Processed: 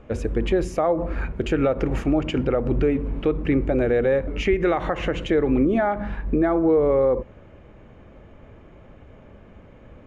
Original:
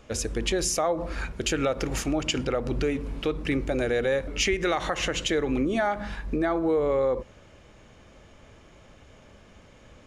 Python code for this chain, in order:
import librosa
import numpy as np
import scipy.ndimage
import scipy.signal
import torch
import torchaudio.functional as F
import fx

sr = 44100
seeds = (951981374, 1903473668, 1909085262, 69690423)

y = fx.curve_eq(x, sr, hz=(380.0, 2400.0, 5200.0), db=(0, -8, -23))
y = y * 10.0 ** (6.5 / 20.0)